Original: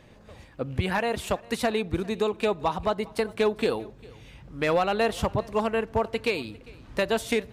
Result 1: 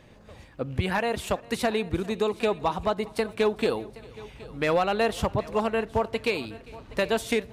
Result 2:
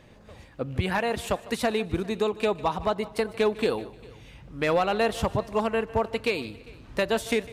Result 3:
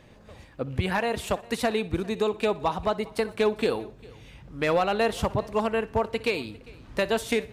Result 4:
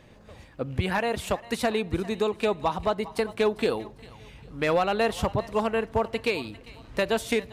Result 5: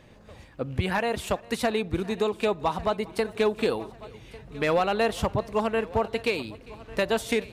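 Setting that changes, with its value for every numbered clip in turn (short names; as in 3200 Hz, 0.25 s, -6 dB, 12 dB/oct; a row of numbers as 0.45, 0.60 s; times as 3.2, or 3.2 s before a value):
thinning echo, time: 771, 152, 61, 399, 1148 ms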